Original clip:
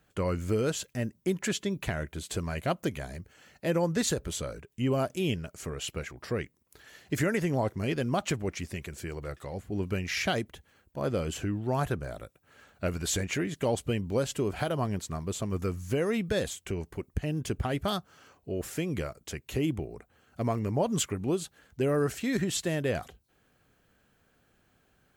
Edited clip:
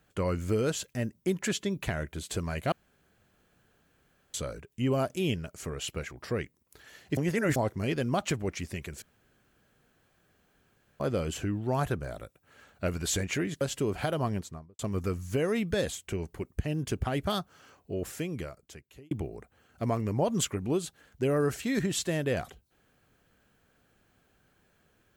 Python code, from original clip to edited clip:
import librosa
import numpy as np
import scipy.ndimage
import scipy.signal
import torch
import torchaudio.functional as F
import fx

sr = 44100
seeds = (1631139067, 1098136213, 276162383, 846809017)

y = fx.studio_fade_out(x, sr, start_s=14.87, length_s=0.5)
y = fx.edit(y, sr, fx.room_tone_fill(start_s=2.72, length_s=1.62),
    fx.reverse_span(start_s=7.17, length_s=0.39),
    fx.room_tone_fill(start_s=9.02, length_s=1.98),
    fx.cut(start_s=13.61, length_s=0.58),
    fx.fade_out_span(start_s=18.52, length_s=1.17), tone=tone)